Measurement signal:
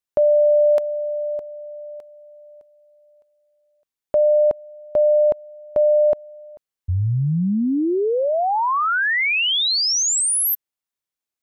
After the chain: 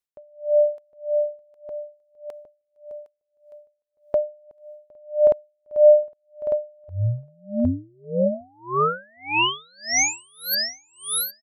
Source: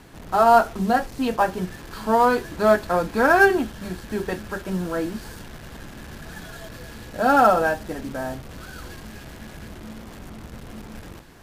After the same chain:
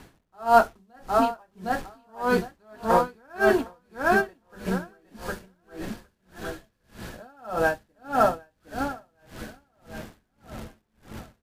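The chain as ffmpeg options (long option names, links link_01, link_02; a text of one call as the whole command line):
ffmpeg -i in.wav -af "aecho=1:1:760|1520|2280|3040|3800:0.668|0.274|0.112|0.0461|0.0189,aeval=exprs='val(0)*pow(10,-38*(0.5-0.5*cos(2*PI*1.7*n/s))/20)':channel_layout=same" out.wav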